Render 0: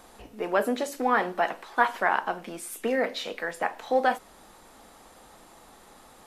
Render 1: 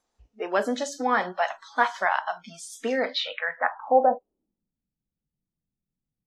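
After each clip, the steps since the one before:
low-pass filter sweep 6,200 Hz → 150 Hz, 0:03.00–0:04.76
noise reduction from a noise print of the clip's start 27 dB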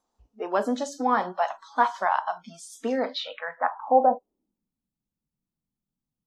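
octave-band graphic EQ 250/1,000/2,000 Hz +5/+7/−7 dB
level −3 dB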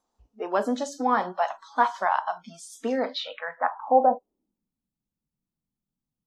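no processing that can be heard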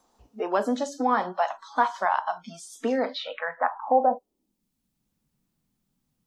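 multiband upward and downward compressor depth 40%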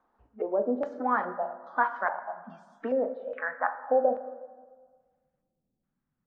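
auto-filter low-pass square 1.2 Hz 530–1,600 Hz
convolution reverb RT60 1.6 s, pre-delay 8 ms, DRR 11 dB
level −7 dB

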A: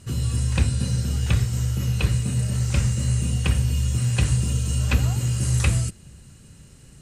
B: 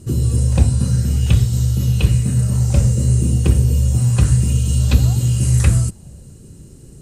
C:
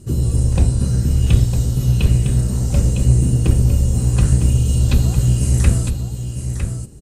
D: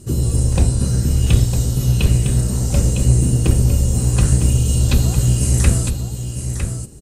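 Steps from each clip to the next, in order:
parametric band 2,100 Hz −13 dB 2.8 octaves; auto-filter bell 0.3 Hz 340–3,900 Hz +9 dB; level +7.5 dB
sub-octave generator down 1 octave, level −5 dB; on a send: single-tap delay 956 ms −8 dB; on the sum: level −2 dB
bass and treble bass −3 dB, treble +3 dB; level +2.5 dB

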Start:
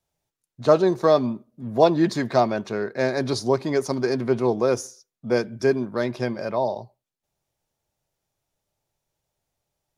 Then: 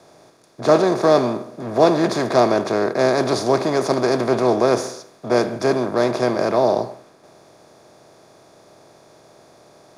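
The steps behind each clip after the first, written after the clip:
compressor on every frequency bin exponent 0.4
multiband upward and downward expander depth 40%
level −2 dB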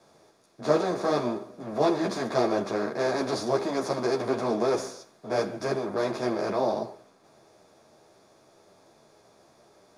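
string-ensemble chorus
level −5.5 dB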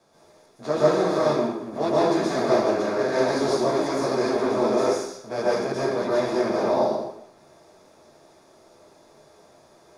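dense smooth reverb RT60 0.66 s, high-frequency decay 0.9×, pre-delay 110 ms, DRR −6.5 dB
level −3 dB

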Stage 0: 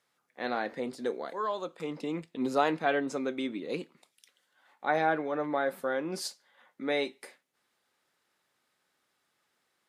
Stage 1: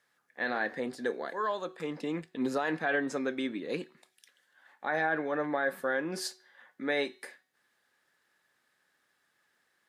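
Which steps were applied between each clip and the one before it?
parametric band 1,700 Hz +12 dB 0.23 octaves
brickwall limiter −19.5 dBFS, peak gain reduction 8.5 dB
hum removal 372.5 Hz, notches 16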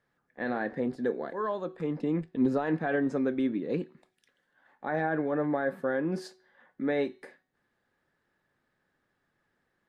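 spectral tilt −4 dB per octave
level −1.5 dB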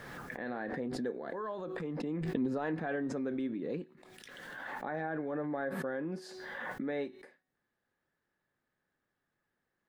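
background raised ahead of every attack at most 24 dB per second
level −8 dB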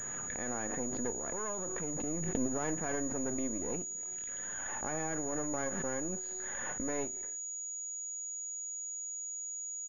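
gain on one half-wave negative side −12 dB
far-end echo of a speakerphone 280 ms, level −26 dB
switching amplifier with a slow clock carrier 6,800 Hz
level +2 dB

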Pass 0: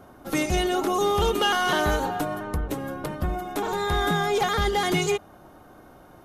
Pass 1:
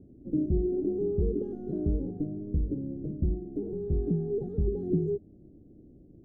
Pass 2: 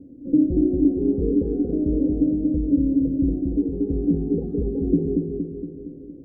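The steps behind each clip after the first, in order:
inverse Chebyshev low-pass filter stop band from 950 Hz, stop band 50 dB
hollow resonant body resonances 280/500 Hz, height 17 dB, ringing for 85 ms; on a send: bucket-brigade delay 232 ms, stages 1,024, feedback 56%, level −3.5 dB

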